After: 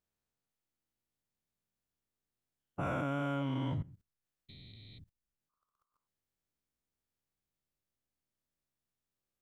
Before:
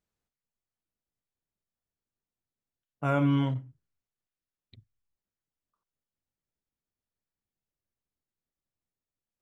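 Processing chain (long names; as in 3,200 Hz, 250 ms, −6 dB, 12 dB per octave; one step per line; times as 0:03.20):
every bin's largest magnitude spread in time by 480 ms
output level in coarse steps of 19 dB
level +3.5 dB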